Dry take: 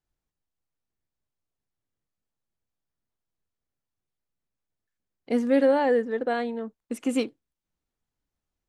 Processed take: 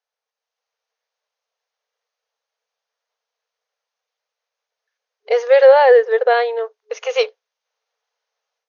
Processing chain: FFT band-pass 430–6700 Hz; level rider gain up to 9 dB; trim +4 dB

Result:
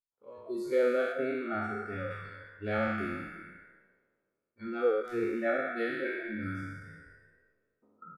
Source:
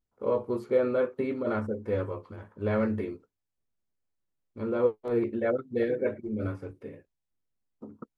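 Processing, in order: spectral sustain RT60 2.46 s; 1.12–2.11 s: treble shelf 2.1 kHz -5.5 dB; spectral noise reduction 22 dB; bass shelf 410 Hz -9 dB; delay 356 ms -20 dB

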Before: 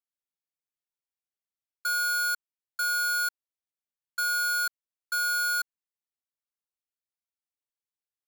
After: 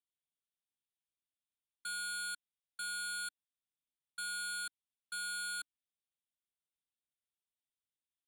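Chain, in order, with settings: FFT filter 290 Hz 0 dB, 450 Hz -26 dB, 990 Hz -14 dB, 1.5 kHz -12 dB, 3.6 kHz +5 dB, 5.5 kHz -27 dB, 9.1 kHz +4 dB, 13 kHz -19 dB; trim -2 dB

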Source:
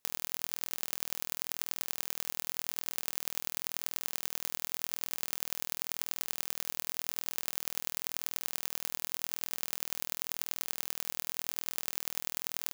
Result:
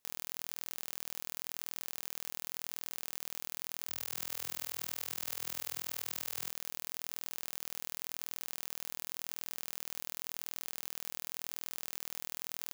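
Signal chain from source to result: peak limiter -11.5 dBFS, peak gain reduction 7.5 dB; 3.78–6.50 s: frequency-shifting echo 94 ms, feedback 36%, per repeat +44 Hz, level -3 dB; trim -1 dB

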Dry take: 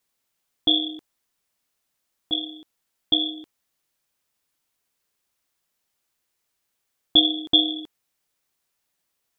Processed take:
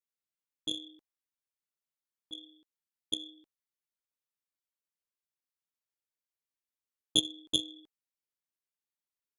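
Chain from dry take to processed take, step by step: Butterworth band-stop 720 Hz, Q 5.2; Chebyshev shaper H 3 -10 dB, 5 -32 dB, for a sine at -3.5 dBFS; trim -5.5 dB

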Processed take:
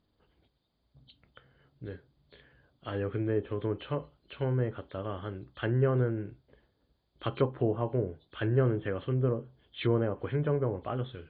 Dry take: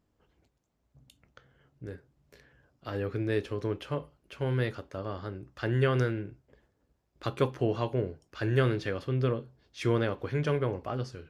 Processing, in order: knee-point frequency compression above 3 kHz 4:1; low-pass that closes with the level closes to 1 kHz, closed at -25 dBFS

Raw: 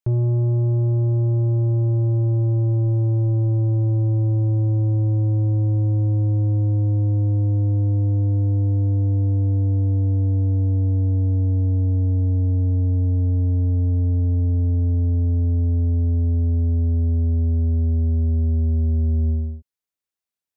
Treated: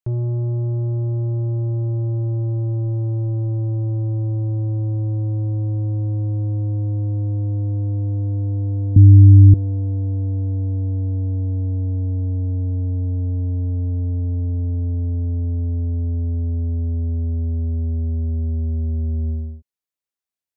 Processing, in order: 8.96–9.54 s: resonant low shelf 340 Hz +13.5 dB, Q 3; trim -2.5 dB

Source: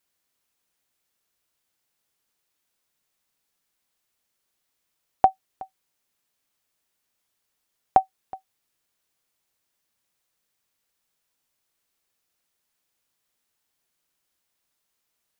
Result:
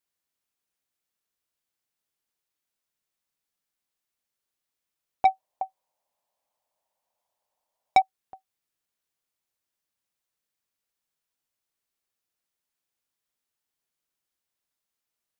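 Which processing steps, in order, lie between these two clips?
5.25–8.02 s: high-order bell 730 Hz +16 dB 1.2 oct; saturation -3.5 dBFS, distortion -6 dB; trim -8.5 dB

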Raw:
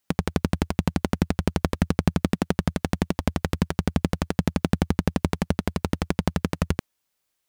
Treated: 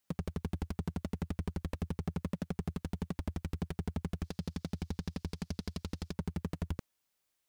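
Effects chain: 4.24–6.13 s: peaking EQ 4.8 kHz +14 dB 1.4 oct; peak limiter -7 dBFS, peak gain reduction 8.5 dB; saturation -24 dBFS, distortion -4 dB; trim -4 dB

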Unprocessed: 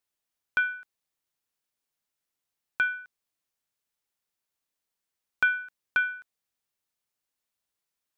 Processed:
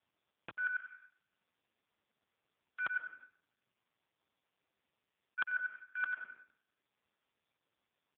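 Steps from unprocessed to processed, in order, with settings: time reversed locally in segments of 96 ms; treble shelf 2.8 kHz -9.5 dB; reverse; compression 12:1, threshold -36 dBFS, peak gain reduction 15.5 dB; reverse; feedback delay 89 ms, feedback 55%, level -20 dB; on a send at -12 dB: reverberation RT60 0.75 s, pre-delay 95 ms; on the sum: trim +4.5 dB; AMR-NB 4.75 kbps 8 kHz

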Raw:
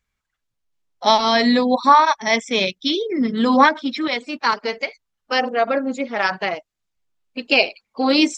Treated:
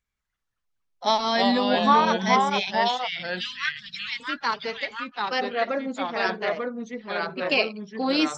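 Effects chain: 2.48–4.20 s: inverse Chebyshev band-stop 270–820 Hz, stop band 50 dB; ever faster or slower copies 194 ms, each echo -2 st, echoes 2; trim -7 dB

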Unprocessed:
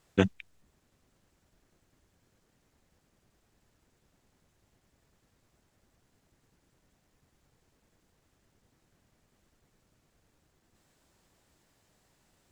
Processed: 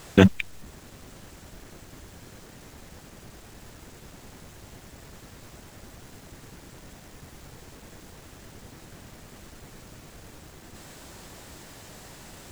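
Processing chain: companding laws mixed up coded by mu; loudness maximiser +16 dB; trim -1 dB

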